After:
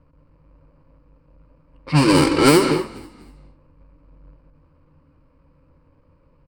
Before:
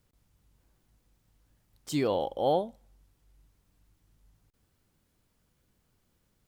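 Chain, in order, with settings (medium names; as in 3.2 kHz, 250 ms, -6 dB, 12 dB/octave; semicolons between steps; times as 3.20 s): square wave that keeps the level; rippled EQ curve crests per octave 1.1, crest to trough 14 dB; in parallel at +0.5 dB: compression 10:1, threshold -33 dBFS, peak gain reduction 19 dB; on the sum: bass shelf 340 Hz -4.5 dB; formant shift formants -6 st; gated-style reverb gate 250 ms rising, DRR 7 dB; level-controlled noise filter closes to 1.3 kHz, open at -13 dBFS; on a send: frequency-shifting echo 244 ms, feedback 34%, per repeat -34 Hz, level -20.5 dB; on the sum: trim +5.5 dB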